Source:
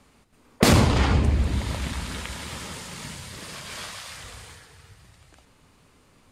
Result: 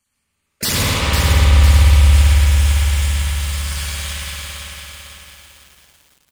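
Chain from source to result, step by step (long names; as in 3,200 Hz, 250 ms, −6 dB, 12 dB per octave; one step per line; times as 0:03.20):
time-frequency cells dropped at random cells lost 28%
guitar amp tone stack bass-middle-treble 5-5-5
leveller curve on the samples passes 3
high-shelf EQ 5,800 Hz +10.5 dB
notch filter 730 Hz, Q 12
bouncing-ball delay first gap 100 ms, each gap 0.7×, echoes 5
spring reverb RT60 2.7 s, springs 56 ms, chirp 75 ms, DRR −6 dB
feedback echo at a low word length 503 ms, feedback 55%, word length 7 bits, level −4.5 dB
level −1 dB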